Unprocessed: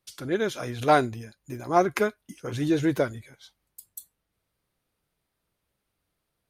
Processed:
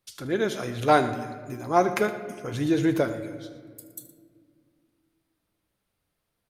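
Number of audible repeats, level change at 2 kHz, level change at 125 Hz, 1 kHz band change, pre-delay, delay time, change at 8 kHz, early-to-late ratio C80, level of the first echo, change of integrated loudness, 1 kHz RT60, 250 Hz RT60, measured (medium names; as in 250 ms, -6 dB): 2, +0.5 dB, +0.5 dB, +0.5 dB, 4 ms, 77 ms, +0.5 dB, 11.5 dB, -16.0 dB, 0.0 dB, 1.8 s, 3.1 s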